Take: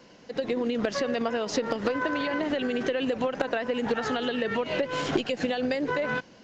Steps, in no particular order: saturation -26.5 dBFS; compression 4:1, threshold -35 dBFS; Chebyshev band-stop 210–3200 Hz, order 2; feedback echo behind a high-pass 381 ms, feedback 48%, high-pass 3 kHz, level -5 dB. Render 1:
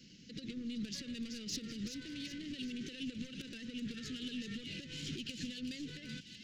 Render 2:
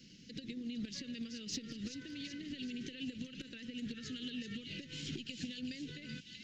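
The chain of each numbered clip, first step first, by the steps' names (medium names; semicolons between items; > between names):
saturation > feedback echo behind a high-pass > compression > Chebyshev band-stop; feedback echo behind a high-pass > compression > Chebyshev band-stop > saturation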